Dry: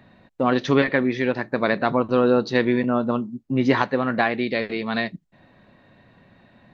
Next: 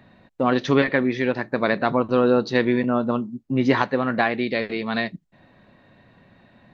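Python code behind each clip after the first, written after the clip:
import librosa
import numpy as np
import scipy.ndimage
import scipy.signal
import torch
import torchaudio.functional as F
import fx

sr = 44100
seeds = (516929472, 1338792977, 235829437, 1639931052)

y = x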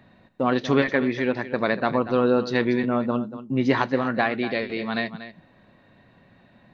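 y = x + 10.0 ** (-13.0 / 20.0) * np.pad(x, (int(237 * sr / 1000.0), 0))[:len(x)]
y = y * librosa.db_to_amplitude(-2.0)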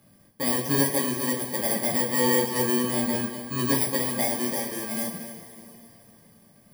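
y = fx.bit_reversed(x, sr, seeds[0], block=32)
y = fx.rev_double_slope(y, sr, seeds[1], early_s=0.29, late_s=3.3, knee_db=-18, drr_db=-4.5)
y = y * librosa.db_to_amplitude(-8.0)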